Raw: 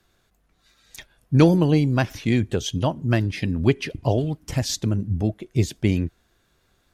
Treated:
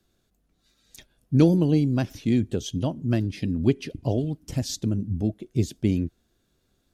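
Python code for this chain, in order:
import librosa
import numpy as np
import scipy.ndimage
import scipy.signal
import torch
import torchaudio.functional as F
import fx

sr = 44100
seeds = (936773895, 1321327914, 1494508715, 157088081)

y = fx.graphic_eq_10(x, sr, hz=(250, 1000, 2000), db=(5, -6, -6))
y = y * librosa.db_to_amplitude(-4.5)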